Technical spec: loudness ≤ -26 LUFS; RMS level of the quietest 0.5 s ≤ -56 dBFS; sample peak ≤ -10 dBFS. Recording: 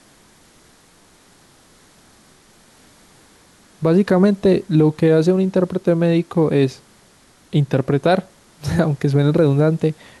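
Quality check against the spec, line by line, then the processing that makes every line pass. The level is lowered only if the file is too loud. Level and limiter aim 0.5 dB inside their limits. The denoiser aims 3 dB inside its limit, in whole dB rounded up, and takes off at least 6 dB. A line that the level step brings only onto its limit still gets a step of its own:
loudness -17.5 LUFS: fail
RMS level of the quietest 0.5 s -52 dBFS: fail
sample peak -5.0 dBFS: fail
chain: gain -9 dB

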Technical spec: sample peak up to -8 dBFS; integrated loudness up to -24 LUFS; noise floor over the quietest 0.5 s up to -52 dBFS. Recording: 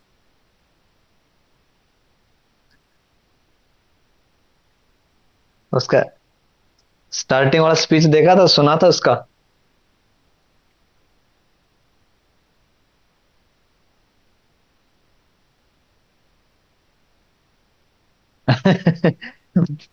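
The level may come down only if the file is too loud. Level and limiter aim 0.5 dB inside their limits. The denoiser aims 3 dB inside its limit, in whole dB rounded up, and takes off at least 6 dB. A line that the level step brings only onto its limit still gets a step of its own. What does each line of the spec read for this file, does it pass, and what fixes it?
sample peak -4.0 dBFS: fail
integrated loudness -16.0 LUFS: fail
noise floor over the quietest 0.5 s -62 dBFS: OK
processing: gain -8.5 dB

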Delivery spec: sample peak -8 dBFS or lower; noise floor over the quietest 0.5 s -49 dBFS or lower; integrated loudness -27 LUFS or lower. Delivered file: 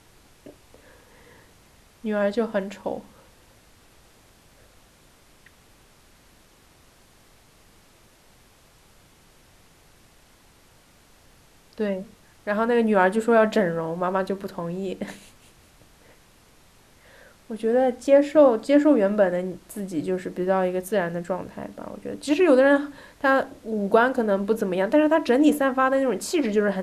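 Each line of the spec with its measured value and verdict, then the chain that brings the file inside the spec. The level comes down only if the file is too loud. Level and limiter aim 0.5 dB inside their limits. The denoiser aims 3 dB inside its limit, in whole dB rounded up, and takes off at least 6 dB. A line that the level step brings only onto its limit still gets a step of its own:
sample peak -5.5 dBFS: fail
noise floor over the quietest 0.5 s -55 dBFS: OK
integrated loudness -22.5 LUFS: fail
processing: gain -5 dB

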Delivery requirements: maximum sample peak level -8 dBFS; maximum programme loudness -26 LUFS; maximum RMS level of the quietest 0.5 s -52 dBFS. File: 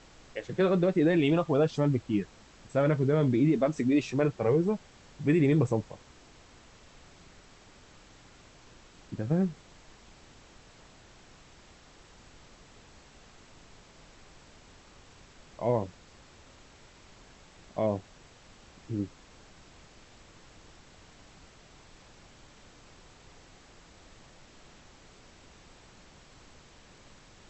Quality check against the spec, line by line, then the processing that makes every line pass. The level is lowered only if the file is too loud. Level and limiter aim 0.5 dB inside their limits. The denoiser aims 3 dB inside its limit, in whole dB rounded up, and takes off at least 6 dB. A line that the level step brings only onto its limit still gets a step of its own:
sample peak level -14.5 dBFS: OK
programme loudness -28.0 LUFS: OK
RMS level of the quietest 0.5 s -55 dBFS: OK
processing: none

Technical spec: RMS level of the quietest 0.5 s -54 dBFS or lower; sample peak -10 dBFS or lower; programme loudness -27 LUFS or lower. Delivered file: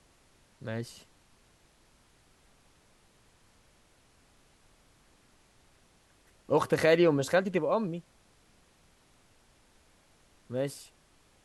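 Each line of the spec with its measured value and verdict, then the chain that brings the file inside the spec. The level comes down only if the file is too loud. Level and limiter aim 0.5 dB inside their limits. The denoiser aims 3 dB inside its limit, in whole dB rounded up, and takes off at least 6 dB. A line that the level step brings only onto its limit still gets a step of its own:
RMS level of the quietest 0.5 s -64 dBFS: OK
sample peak -11.5 dBFS: OK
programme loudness -29.0 LUFS: OK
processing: none

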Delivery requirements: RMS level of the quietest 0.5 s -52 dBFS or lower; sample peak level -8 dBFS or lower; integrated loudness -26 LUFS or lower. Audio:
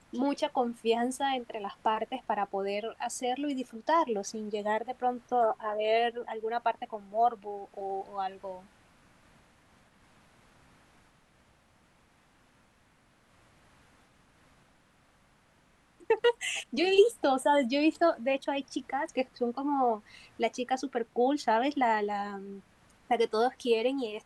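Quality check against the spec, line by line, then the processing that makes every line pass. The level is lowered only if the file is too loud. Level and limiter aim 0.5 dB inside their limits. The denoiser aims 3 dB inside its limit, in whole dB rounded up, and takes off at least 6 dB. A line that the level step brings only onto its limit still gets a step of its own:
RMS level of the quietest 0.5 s -65 dBFS: OK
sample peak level -9.5 dBFS: OK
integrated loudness -30.0 LUFS: OK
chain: none

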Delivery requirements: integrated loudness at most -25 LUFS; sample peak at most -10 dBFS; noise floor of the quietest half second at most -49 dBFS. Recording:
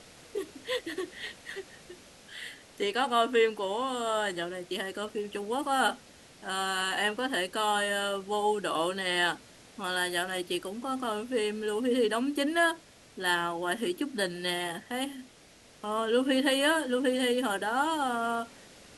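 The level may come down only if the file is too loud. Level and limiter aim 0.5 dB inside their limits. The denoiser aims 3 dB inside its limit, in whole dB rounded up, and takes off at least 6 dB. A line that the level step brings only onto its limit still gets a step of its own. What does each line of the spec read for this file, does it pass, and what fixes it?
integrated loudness -30.0 LUFS: OK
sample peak -13.0 dBFS: OK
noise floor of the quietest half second -56 dBFS: OK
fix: none

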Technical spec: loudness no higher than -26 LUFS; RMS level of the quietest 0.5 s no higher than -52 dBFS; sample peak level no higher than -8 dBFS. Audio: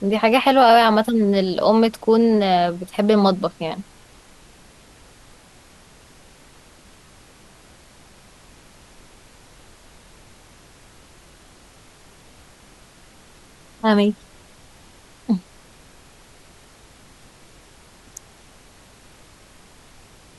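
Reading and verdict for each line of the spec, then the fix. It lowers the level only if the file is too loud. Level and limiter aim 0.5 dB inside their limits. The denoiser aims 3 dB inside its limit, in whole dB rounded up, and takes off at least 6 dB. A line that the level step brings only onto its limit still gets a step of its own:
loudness -17.5 LUFS: fail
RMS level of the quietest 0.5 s -49 dBFS: fail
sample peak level -3.0 dBFS: fail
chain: gain -9 dB

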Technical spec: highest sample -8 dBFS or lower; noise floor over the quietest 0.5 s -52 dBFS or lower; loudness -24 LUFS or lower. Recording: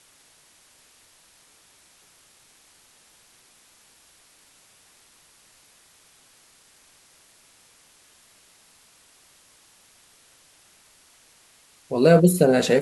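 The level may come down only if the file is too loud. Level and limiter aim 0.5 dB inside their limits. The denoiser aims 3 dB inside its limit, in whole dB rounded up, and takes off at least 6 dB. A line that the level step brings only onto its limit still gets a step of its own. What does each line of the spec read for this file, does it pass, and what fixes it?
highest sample -3.0 dBFS: fail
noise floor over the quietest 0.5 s -57 dBFS: OK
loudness -18.0 LUFS: fail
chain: gain -6.5 dB

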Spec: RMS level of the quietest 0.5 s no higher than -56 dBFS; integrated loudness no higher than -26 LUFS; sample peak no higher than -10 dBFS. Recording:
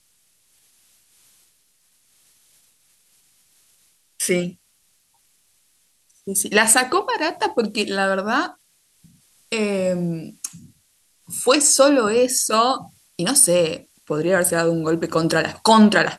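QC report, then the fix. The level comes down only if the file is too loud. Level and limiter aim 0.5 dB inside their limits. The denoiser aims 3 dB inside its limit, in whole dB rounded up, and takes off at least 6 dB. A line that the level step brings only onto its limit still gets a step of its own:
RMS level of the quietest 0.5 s -63 dBFS: OK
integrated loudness -18.5 LUFS: fail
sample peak -2.5 dBFS: fail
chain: gain -8 dB

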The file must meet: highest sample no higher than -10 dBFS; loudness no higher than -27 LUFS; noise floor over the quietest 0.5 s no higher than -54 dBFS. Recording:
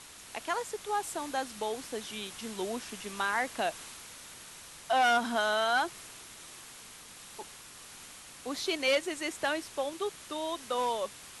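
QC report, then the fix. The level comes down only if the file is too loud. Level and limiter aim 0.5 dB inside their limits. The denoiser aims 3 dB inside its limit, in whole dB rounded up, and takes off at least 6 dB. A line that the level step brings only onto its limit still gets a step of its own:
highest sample -16.5 dBFS: OK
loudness -32.0 LUFS: OK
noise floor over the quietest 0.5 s -50 dBFS: fail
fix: denoiser 7 dB, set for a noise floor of -50 dBFS

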